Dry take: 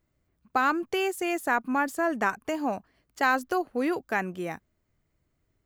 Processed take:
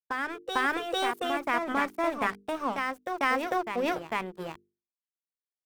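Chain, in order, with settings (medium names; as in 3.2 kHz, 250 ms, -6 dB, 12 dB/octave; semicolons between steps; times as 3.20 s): crossover distortion -37 dBFS; tilt shelf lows +3.5 dB, about 920 Hz; formant shift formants +4 st; hum notches 50/100/150/200/250/300/350/400/450 Hz; reverse echo 449 ms -5 dB; trim -1.5 dB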